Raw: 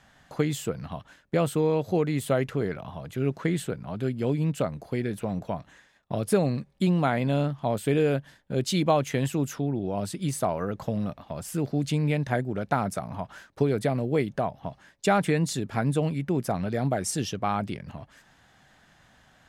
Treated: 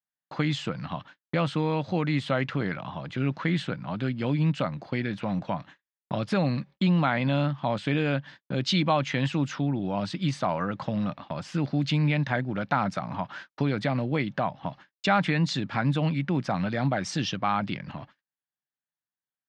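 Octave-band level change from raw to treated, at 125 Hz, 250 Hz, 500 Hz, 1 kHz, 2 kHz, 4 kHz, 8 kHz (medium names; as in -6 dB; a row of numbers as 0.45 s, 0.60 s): +0.5 dB, +0.5 dB, -4.5 dB, +1.5 dB, +4.0 dB, +4.5 dB, -8.5 dB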